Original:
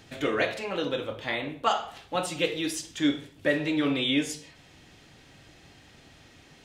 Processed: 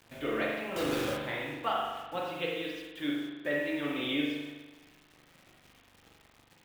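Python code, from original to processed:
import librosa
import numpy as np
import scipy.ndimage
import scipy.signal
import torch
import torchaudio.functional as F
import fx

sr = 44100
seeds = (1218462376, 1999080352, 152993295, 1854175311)

y = scipy.signal.sosfilt(scipy.signal.butter(4, 3700.0, 'lowpass', fs=sr, output='sos'), x)
y = fx.quant_companded(y, sr, bits=2, at=(0.76, 1.18))
y = fx.low_shelf(y, sr, hz=280.0, db=-7.0, at=(2.18, 4.0))
y = fx.quant_dither(y, sr, seeds[0], bits=8, dither='none')
y = fx.rev_spring(y, sr, rt60_s=1.2, pass_ms=(41,), chirp_ms=50, drr_db=-1.5)
y = y * librosa.db_to_amplitude(-8.0)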